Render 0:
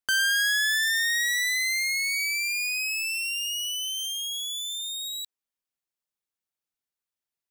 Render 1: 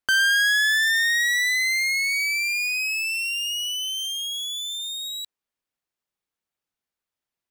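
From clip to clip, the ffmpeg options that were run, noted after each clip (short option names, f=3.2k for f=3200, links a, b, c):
-af "highshelf=f=4.3k:g=-8,volume=6dB"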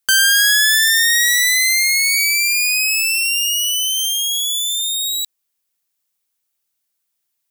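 -af "crystalizer=i=4.5:c=0"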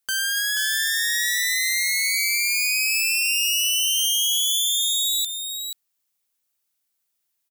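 -af "alimiter=limit=-10.5dB:level=0:latency=1:release=31,aecho=1:1:481:0.447,volume=-2.5dB"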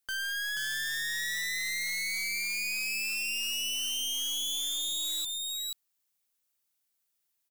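-filter_complex "[0:a]asplit=2[a][b];[b]alimiter=limit=-21.5dB:level=0:latency=1,volume=-1.5dB[c];[a][c]amix=inputs=2:normalize=0,asoftclip=type=hard:threshold=-22dB,volume=-8.5dB"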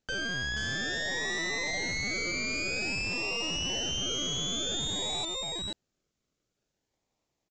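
-filter_complex "[0:a]asplit=2[a][b];[b]acrusher=samples=39:mix=1:aa=0.000001:lfo=1:lforange=23.4:lforate=0.52,volume=-6dB[c];[a][c]amix=inputs=2:normalize=0,aresample=16000,aresample=44100"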